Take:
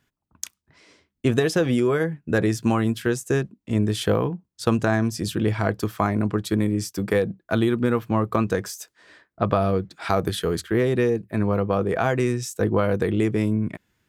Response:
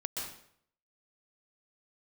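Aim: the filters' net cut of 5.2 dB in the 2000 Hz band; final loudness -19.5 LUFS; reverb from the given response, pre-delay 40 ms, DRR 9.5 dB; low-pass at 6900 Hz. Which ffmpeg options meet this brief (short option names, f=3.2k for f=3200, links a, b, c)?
-filter_complex "[0:a]lowpass=6.9k,equalizer=f=2k:t=o:g=-7,asplit=2[a][b];[1:a]atrim=start_sample=2205,adelay=40[c];[b][c]afir=irnorm=-1:irlink=0,volume=-12dB[d];[a][d]amix=inputs=2:normalize=0,volume=4dB"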